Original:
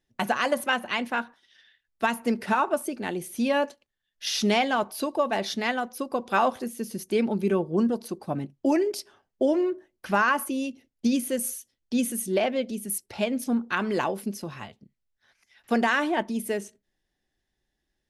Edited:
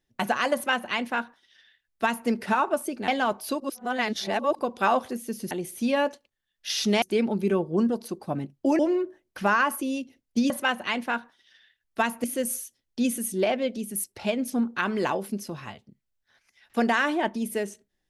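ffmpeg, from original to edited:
-filter_complex "[0:a]asplit=9[s0][s1][s2][s3][s4][s5][s6][s7][s8];[s0]atrim=end=3.082[s9];[s1]atrim=start=4.588:end=5.112[s10];[s2]atrim=start=5.108:end=6.102,asetpts=PTS-STARTPTS,areverse[s11];[s3]atrim=start=6.098:end=7.022[s12];[s4]atrim=start=3.078:end=4.592[s13];[s5]atrim=start=7.018:end=8.792[s14];[s6]atrim=start=9.468:end=11.182[s15];[s7]atrim=start=0.538:end=2.282[s16];[s8]atrim=start=11.178[s17];[s9][s10]acrossfade=d=0.004:c1=hsin:c2=hsin[s18];[s18][s11]acrossfade=d=0.004:c1=hsin:c2=hsin[s19];[s19][s12]acrossfade=d=0.004:c1=hsin:c2=hsin[s20];[s20][s13]acrossfade=d=0.004:c1=hsin:c2=hsin[s21];[s21][s14]acrossfade=d=0.004:c1=hsin:c2=hsin[s22];[s22][s15]acrossfade=d=0.004:c1=hsin:c2=hsin[s23];[s23][s16]acrossfade=d=0.004:c1=hsin:c2=hsin[s24];[s24][s17]acrossfade=d=0.004:c1=hsin:c2=hsin"

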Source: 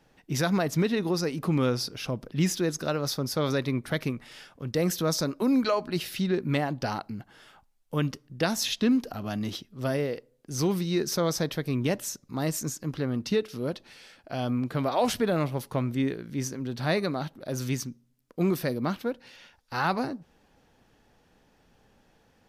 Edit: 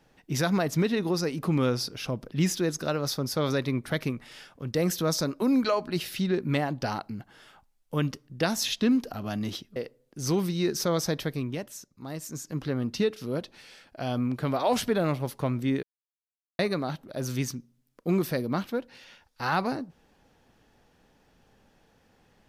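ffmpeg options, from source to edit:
-filter_complex "[0:a]asplit=6[s0][s1][s2][s3][s4][s5];[s0]atrim=end=9.762[s6];[s1]atrim=start=10.078:end=12,asetpts=PTS-STARTPTS,afade=t=out:st=1.552:d=0.37:c=qua:silence=0.375837[s7];[s2]atrim=start=12:end=12.48,asetpts=PTS-STARTPTS,volume=0.376[s8];[s3]atrim=start=12.48:end=16.15,asetpts=PTS-STARTPTS,afade=t=in:d=0.37:c=qua:silence=0.375837,afade=t=out:st=3.666:d=0.004:c=hsin[s9];[s4]atrim=start=16.15:end=16.91,asetpts=PTS-STARTPTS,volume=0[s10];[s5]atrim=start=16.91,asetpts=PTS-STARTPTS,afade=t=in:d=0.004:c=hsin[s11];[s7][s8][s9][s10][s11]concat=n=5:v=0:a=1[s12];[s6][s12]acrossfade=d=0.004:c1=hsin:c2=hsin"

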